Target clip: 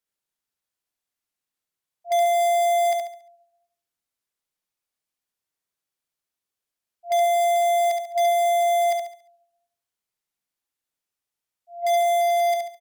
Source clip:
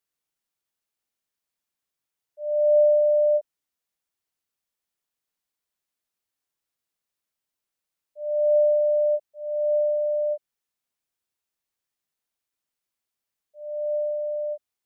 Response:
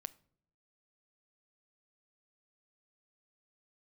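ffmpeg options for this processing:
-filter_complex "[0:a]agate=range=0.2:threshold=0.0282:ratio=16:detection=peak,acontrast=38,asplit=2[s0][s1];[1:a]atrim=start_sample=2205,asetrate=23373,aresample=44100[s2];[s1][s2]afir=irnorm=-1:irlink=0,volume=0.75[s3];[s0][s3]amix=inputs=2:normalize=0,alimiter=limit=0.178:level=0:latency=1:release=41,asplit=2[s4][s5];[s5]aeval=exprs='(mod(8.91*val(0)+1,2)-1)/8.91':c=same,volume=0.335[s6];[s4][s6]amix=inputs=2:normalize=0,aecho=1:1:81|162|243|324|405:0.596|0.22|0.0815|0.0302|0.0112,asetrate=51156,aresample=44100"

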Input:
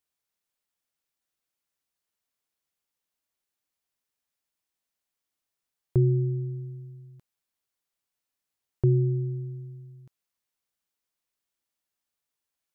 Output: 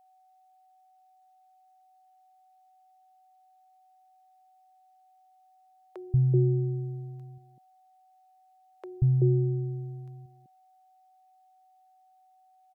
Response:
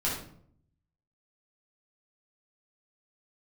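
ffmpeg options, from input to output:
-filter_complex "[0:a]acrossover=split=170|550[s0][s1][s2];[s0]adelay=180[s3];[s1]adelay=380[s4];[s3][s4][s2]amix=inputs=3:normalize=0,aeval=exprs='val(0)+0.000891*sin(2*PI*750*n/s)':c=same,volume=1.19"

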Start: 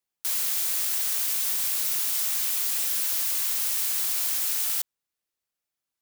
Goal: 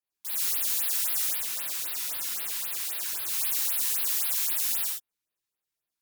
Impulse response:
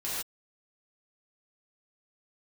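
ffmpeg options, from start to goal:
-filter_complex "[0:a]asettb=1/sr,asplit=3[s0][s1][s2];[s0]atrim=end=1.284[s3];[s1]atrim=start=1.28:end=3.28,asetpts=PTS-STARTPTS,afade=t=in:d=0.004:c=qsin,afade=t=out:st=1.996:d=0.004:c=qsin,highshelf=f=4000:g=-5.5[s4];[s2]atrim=start=3.276[s5];[s3][s4]acrossfade=d=0.004:c1=hsin:c2=qsin[s6];[s6][s5]acrossfade=d=0.004:c1=qsin:c2=hsin[s7];[1:a]atrim=start_sample=2205,asetrate=42336,aresample=44100[s8];[s7][s8]afir=irnorm=-1:irlink=0,afftfilt=real='re*(1-between(b*sr/1024,500*pow(7500/500,0.5+0.5*sin(2*PI*3.8*pts/sr))/1.41,500*pow(7500/500,0.5+0.5*sin(2*PI*3.8*pts/sr))*1.41))':imag='im*(1-between(b*sr/1024,500*pow(7500/500,0.5+0.5*sin(2*PI*3.8*pts/sr))/1.41,500*pow(7500/500,0.5+0.5*sin(2*PI*3.8*pts/sr))*1.41))':win_size=1024:overlap=0.75,volume=0.501"

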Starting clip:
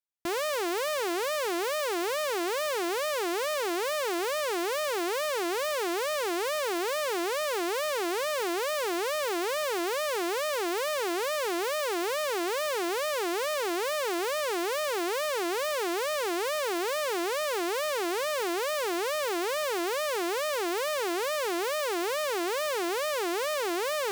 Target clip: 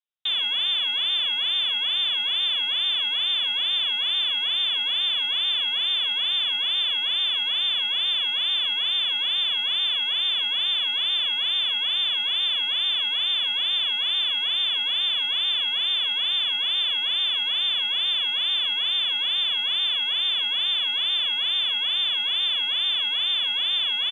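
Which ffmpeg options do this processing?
-filter_complex "[0:a]lowpass=f=3300:t=q:w=0.5098,lowpass=f=3300:t=q:w=0.6013,lowpass=f=3300:t=q:w=0.9,lowpass=f=3300:t=q:w=2.563,afreqshift=-3900,aexciter=amount=2.6:drive=6.3:freq=3000,asplit=2[s0][s1];[s1]adelay=47,volume=0.224[s2];[s0][s2]amix=inputs=2:normalize=0,volume=0.841"

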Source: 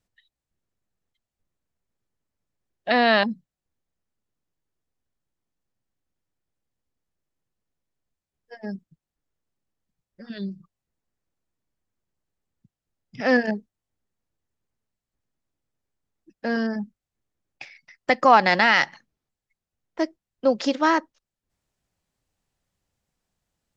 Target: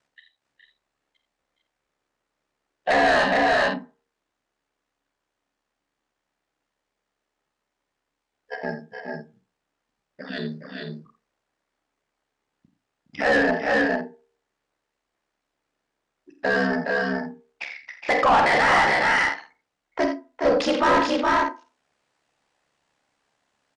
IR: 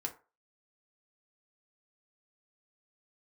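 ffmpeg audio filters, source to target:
-filter_complex "[0:a]bandreject=f=143.6:t=h:w=4,bandreject=f=287.2:t=h:w=4,bandreject=f=430.8:t=h:w=4,aeval=exprs='val(0)*sin(2*PI*35*n/s)':c=same,asplit=2[s0][s1];[s1]equalizer=f=250:t=o:w=1.9:g=11.5[s2];[1:a]atrim=start_sample=2205,adelay=32[s3];[s2][s3]afir=irnorm=-1:irlink=0,volume=0.141[s4];[s0][s4]amix=inputs=2:normalize=0,asoftclip=type=tanh:threshold=0.224,lowshelf=f=390:g=-7,aecho=1:1:47|83|416|448|501:0.266|0.237|0.422|0.473|0.178,asplit=2[s5][s6];[s6]highpass=f=720:p=1,volume=15.8,asoftclip=type=tanh:threshold=0.355[s7];[s5][s7]amix=inputs=2:normalize=0,lowpass=f=1600:p=1,volume=0.501,aresample=22050,aresample=44100"

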